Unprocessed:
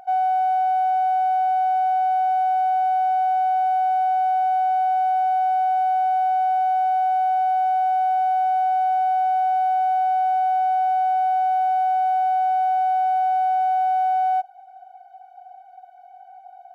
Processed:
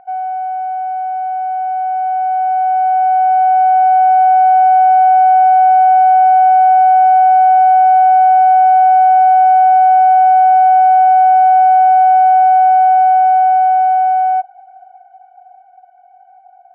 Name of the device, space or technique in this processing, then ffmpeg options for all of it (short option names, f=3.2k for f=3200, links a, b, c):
action camera in a waterproof case: -af "lowpass=f=2.3k:w=0.5412,lowpass=f=2.3k:w=1.3066,dynaudnorm=f=280:g=21:m=12.5dB" -ar 24000 -c:a aac -b:a 48k